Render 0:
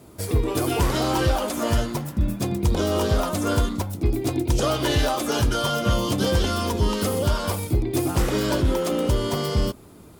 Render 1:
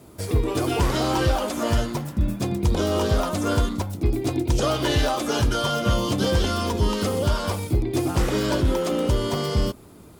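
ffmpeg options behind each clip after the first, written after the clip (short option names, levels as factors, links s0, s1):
-filter_complex "[0:a]acrossover=split=8200[s0][s1];[s1]acompressor=threshold=0.00794:ratio=4:attack=1:release=60[s2];[s0][s2]amix=inputs=2:normalize=0"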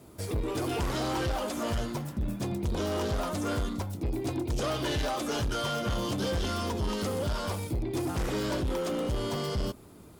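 -af "asoftclip=type=tanh:threshold=0.0891,volume=0.596"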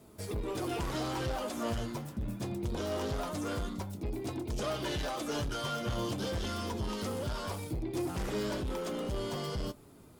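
-af "flanger=delay=4.6:depth=4.6:regen=63:speed=0.23:shape=sinusoidal"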